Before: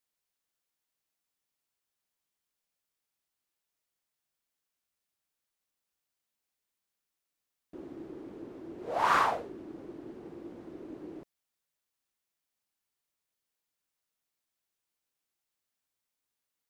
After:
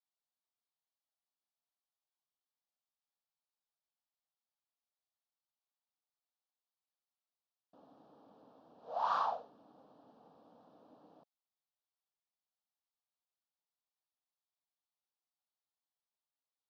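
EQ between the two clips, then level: air absorption 99 m; speaker cabinet 330–5100 Hz, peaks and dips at 400 Hz -5 dB, 570 Hz -4 dB, 1000 Hz -4 dB, 1500 Hz -6 dB, 2500 Hz -6 dB; fixed phaser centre 850 Hz, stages 4; -2.0 dB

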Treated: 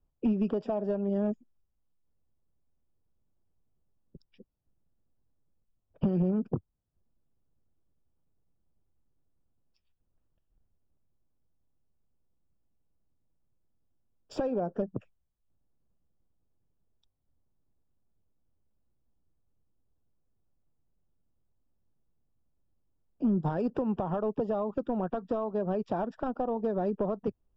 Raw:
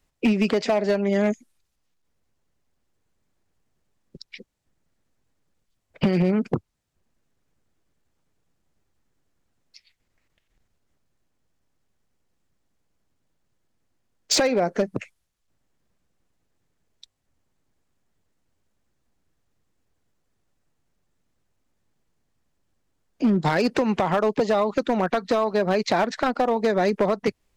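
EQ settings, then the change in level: running mean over 21 samples; low shelf 150 Hz +8 dB; -9.0 dB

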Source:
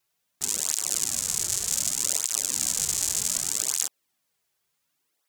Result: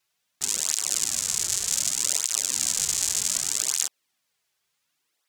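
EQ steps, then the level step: tilt shelf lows -4 dB, about 1200 Hz; high shelf 8700 Hz -10.5 dB; +1.5 dB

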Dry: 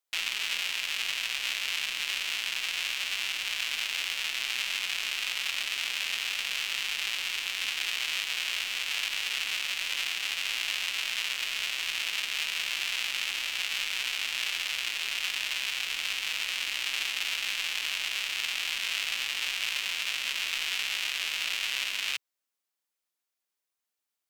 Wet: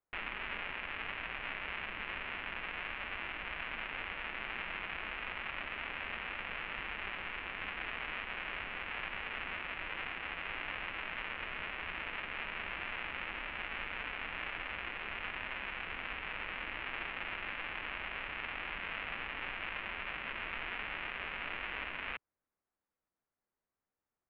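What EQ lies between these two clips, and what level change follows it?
Bessel low-pass 1300 Hz, order 6; low shelf 210 Hz +10 dB; +3.5 dB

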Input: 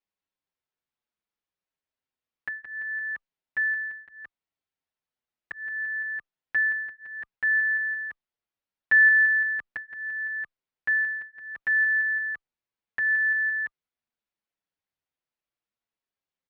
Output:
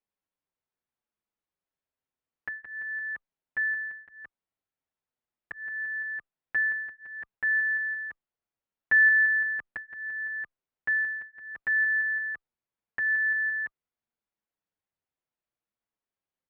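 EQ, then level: LPF 1600 Hz 6 dB/oct; +1.0 dB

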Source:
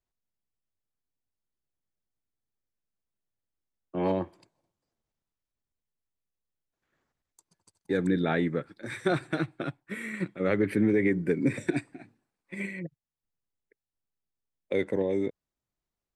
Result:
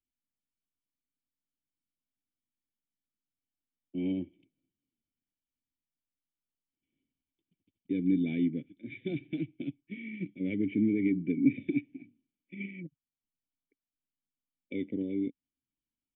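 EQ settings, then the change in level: vocal tract filter i; high shelf 2700 Hz +10.5 dB; fixed phaser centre 2900 Hz, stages 4; +4.0 dB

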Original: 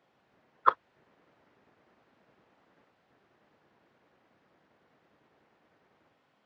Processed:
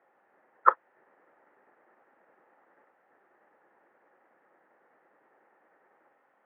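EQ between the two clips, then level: speaker cabinet 290–2200 Hz, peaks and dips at 360 Hz +4 dB, 530 Hz +6 dB, 830 Hz +8 dB, 1300 Hz +5 dB, 1800 Hz +8 dB; -2.0 dB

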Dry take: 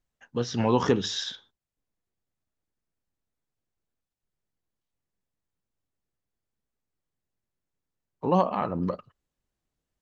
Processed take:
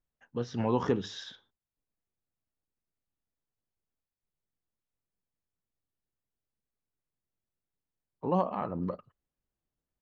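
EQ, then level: high shelf 3000 Hz -10.5 dB; -5.0 dB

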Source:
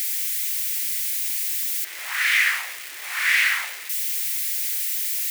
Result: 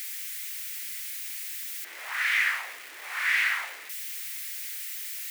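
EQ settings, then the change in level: high shelf 2200 Hz -11.5 dB; 0.0 dB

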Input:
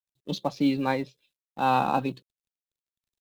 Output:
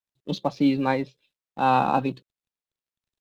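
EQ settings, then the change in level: LPF 3900 Hz 6 dB/oct; +3.0 dB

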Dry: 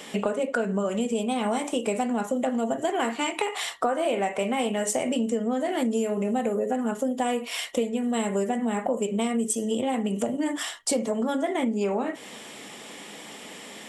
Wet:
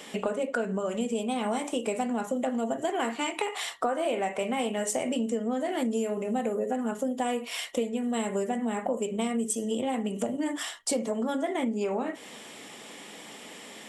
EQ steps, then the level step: notches 50/100/150/200 Hz; -3.0 dB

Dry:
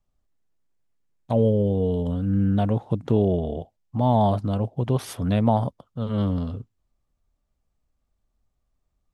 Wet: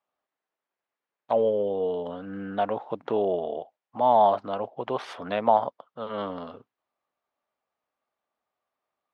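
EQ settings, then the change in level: BPF 690–3800 Hz; high shelf 2800 Hz -10.5 dB; +7.0 dB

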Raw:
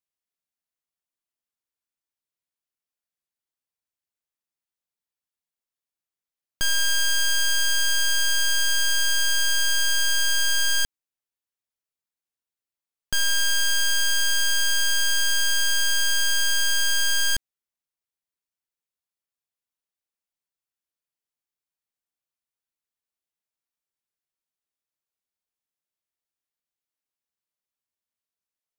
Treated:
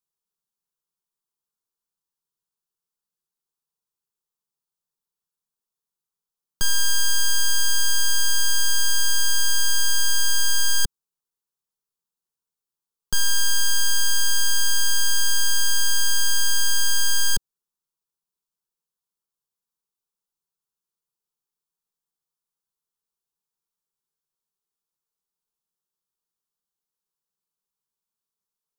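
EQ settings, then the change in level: low shelf 390 Hz +3.5 dB; fixed phaser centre 420 Hz, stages 8; +3.0 dB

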